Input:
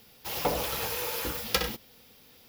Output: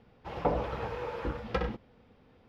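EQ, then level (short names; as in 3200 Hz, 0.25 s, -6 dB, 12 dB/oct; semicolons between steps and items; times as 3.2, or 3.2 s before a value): LPF 1400 Hz 12 dB/oct; low shelf 170 Hz +5 dB; 0.0 dB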